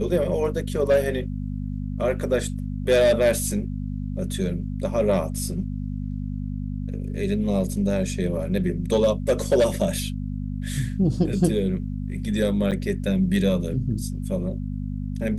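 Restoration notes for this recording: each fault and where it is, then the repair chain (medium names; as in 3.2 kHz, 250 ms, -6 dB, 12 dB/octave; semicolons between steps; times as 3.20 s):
hum 50 Hz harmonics 5 -29 dBFS
12.71–12.72 s: dropout 7.7 ms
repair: de-hum 50 Hz, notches 5; interpolate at 12.71 s, 7.7 ms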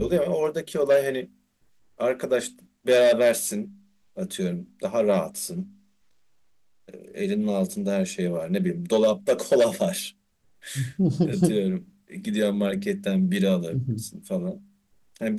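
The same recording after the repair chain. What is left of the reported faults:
nothing left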